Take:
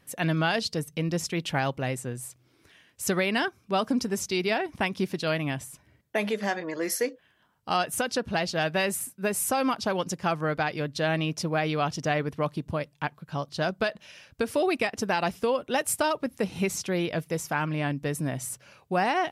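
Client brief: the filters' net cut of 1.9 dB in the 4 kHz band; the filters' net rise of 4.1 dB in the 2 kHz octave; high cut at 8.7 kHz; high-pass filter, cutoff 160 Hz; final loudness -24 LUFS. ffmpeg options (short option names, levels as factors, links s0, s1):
-af "highpass=160,lowpass=8700,equalizer=f=2000:t=o:g=6.5,equalizer=f=4000:t=o:g=-5.5,volume=1.58"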